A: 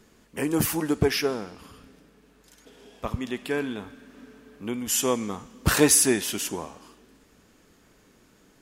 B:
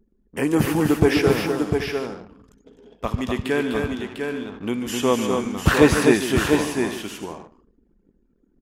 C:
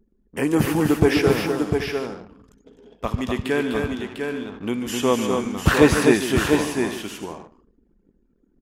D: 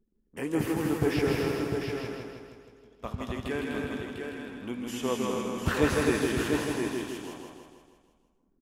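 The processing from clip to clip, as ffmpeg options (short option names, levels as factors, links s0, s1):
-filter_complex "[0:a]acrossover=split=3400[s0][s1];[s1]acompressor=threshold=0.01:ratio=4:attack=1:release=60[s2];[s0][s2]amix=inputs=2:normalize=0,aecho=1:1:145|251|700|778|852:0.266|0.562|0.531|0.178|0.119,anlmdn=0.0158,volume=1.78"
-af anull
-filter_complex "[0:a]flanger=delay=5.8:depth=9.5:regen=77:speed=1.8:shape=triangular,asplit=2[s0][s1];[s1]aecho=0:1:160|320|480|640|800|960|1120:0.668|0.361|0.195|0.105|0.0568|0.0307|0.0166[s2];[s0][s2]amix=inputs=2:normalize=0,volume=0.473"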